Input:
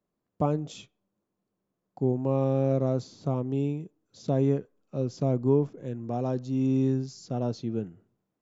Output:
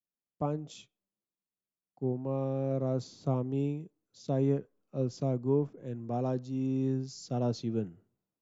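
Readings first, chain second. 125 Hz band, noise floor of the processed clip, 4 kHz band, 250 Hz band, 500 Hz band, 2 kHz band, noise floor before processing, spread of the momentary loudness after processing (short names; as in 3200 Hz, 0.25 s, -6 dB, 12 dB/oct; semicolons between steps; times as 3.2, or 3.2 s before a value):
-4.5 dB, under -85 dBFS, -1.5 dB, -4.5 dB, -4.5 dB, -5.0 dB, -83 dBFS, 11 LU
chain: vocal rider within 3 dB 0.5 s; three-band expander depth 40%; gain -4 dB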